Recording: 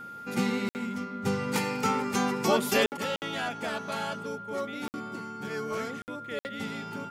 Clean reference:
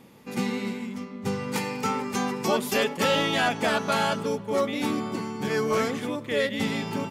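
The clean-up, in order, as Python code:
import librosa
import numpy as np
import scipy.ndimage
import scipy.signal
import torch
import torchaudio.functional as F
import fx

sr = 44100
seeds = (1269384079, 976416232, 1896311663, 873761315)

y = fx.notch(x, sr, hz=1400.0, q=30.0)
y = fx.fix_interpolate(y, sr, at_s=(0.69, 2.86, 3.16, 4.88, 6.02, 6.39), length_ms=59.0)
y = fx.gain(y, sr, db=fx.steps((0.0, 0.0), (2.97, 9.0)))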